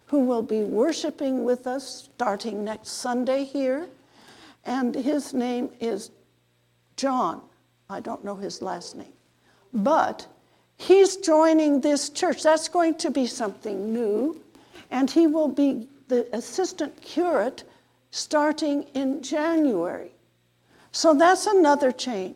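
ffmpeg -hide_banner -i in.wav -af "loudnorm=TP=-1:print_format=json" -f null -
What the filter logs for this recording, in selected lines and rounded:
"input_i" : "-23.5",
"input_tp" : "-6.3",
"input_lra" : "7.4",
"input_thresh" : "-34.5",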